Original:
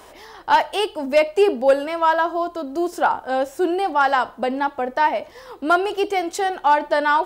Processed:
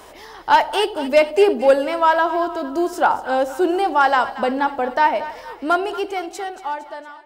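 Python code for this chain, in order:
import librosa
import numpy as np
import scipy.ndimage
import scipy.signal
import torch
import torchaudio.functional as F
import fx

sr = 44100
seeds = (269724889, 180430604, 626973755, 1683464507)

y = fx.fade_out_tail(x, sr, length_s=2.19)
y = fx.echo_split(y, sr, split_hz=910.0, low_ms=85, high_ms=230, feedback_pct=52, wet_db=-13.5)
y = F.gain(torch.from_numpy(y), 2.0).numpy()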